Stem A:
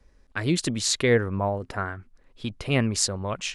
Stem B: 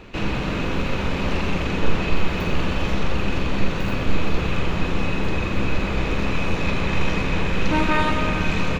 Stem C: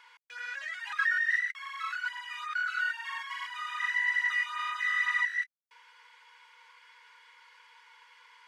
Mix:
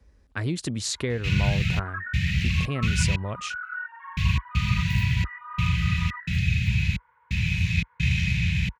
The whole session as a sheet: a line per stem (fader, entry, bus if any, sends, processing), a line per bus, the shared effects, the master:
−5.0 dB, 0.00 s, no send, low-shelf EQ 140 Hz +11 dB; downward compressor, threshold −21 dBFS, peak gain reduction 8.5 dB
+1.5 dB, 1.10 s, muted 0:03.16–0:04.17, no send, elliptic band-stop filter 160–2,100 Hz, stop band 40 dB; parametric band 100 Hz +7 dB 1.1 octaves; gate pattern "xxxx..xxx." 87 BPM −60 dB
0.0 dB, 0.95 s, no send, low-pass filter 1,400 Hz 24 dB per octave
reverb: not used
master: high-pass filter 50 Hz 24 dB per octave; speech leveller within 3 dB 2 s

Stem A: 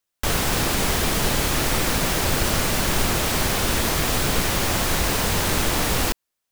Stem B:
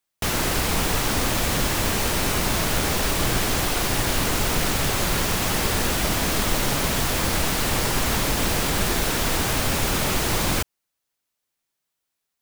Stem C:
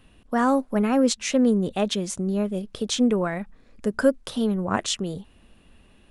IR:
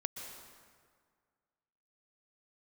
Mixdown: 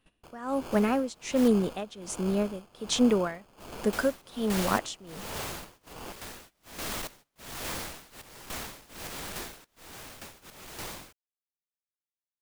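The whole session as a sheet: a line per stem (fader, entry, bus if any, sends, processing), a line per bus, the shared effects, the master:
−16.5 dB, 0.00 s, no send, decimation without filtering 23×
−6.5 dB, 0.50 s, muted 0:01.48–0:03.60, no send, soft clipping −17.5 dBFS, distortion −16 dB; sample-and-hold tremolo, depth 95%
+1.0 dB, 0.00 s, no send, no processing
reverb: not used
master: amplitude tremolo 1.3 Hz, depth 91%; noise gate −51 dBFS, range −15 dB; low-shelf EQ 210 Hz −7.5 dB

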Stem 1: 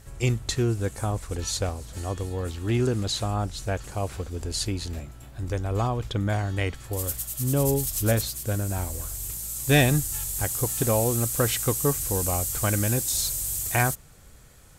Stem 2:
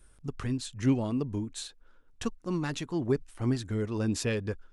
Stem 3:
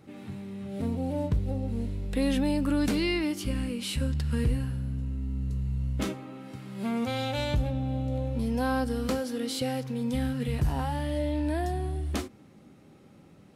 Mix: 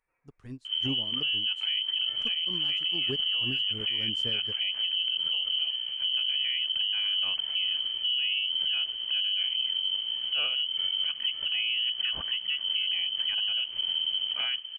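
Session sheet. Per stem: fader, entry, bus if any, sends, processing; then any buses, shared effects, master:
−0.5 dB, 0.65 s, bus A, no send, spectral tilt −2.5 dB per octave
+2.0 dB, 0.00 s, no bus, no send, expander for the loud parts 2.5 to 1, over −44 dBFS
−15.5 dB, 0.00 s, bus A, no send, inverse Chebyshev high-pass filter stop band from 180 Hz, stop band 70 dB; through-zero flanger with one copy inverted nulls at 0.84 Hz, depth 7.9 ms; automatic ducking −22 dB, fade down 0.80 s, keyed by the second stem
bus A: 0.0 dB, voice inversion scrambler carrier 3,100 Hz; downward compressor, threshold −23 dBFS, peak gain reduction 12.5 dB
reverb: not used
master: brickwall limiter −20.5 dBFS, peak gain reduction 11 dB

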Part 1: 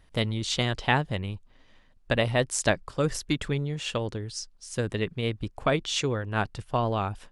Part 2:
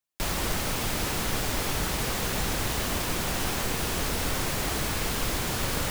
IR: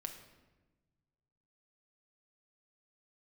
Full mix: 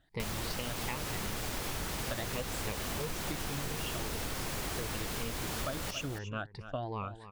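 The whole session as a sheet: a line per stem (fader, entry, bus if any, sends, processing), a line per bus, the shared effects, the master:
−10.0 dB, 0.00 s, no send, echo send −16 dB, rippled gain that drifts along the octave scale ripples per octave 0.84, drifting +2.8 Hz, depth 16 dB; low-pass filter 5,900 Hz 12 dB per octave
−3.0 dB, 0.00 s, no send, echo send −12.5 dB, no processing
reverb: not used
echo: single-tap delay 277 ms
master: downward compressor, threshold −33 dBFS, peak gain reduction 10.5 dB

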